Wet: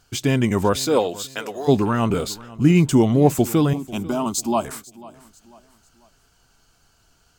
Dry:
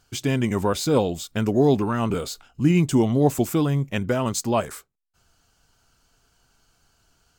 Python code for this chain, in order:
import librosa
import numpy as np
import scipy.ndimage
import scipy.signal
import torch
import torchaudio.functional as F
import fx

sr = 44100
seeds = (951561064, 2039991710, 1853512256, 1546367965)

y = fx.highpass(x, sr, hz=fx.line((0.85, 290.0), (1.67, 1100.0)), slope=12, at=(0.85, 1.67), fade=0.02)
y = fx.fixed_phaser(y, sr, hz=490.0, stages=6, at=(3.73, 4.65))
y = fx.echo_feedback(y, sr, ms=494, feedback_pct=39, wet_db=-20)
y = y * 10.0 ** (3.5 / 20.0)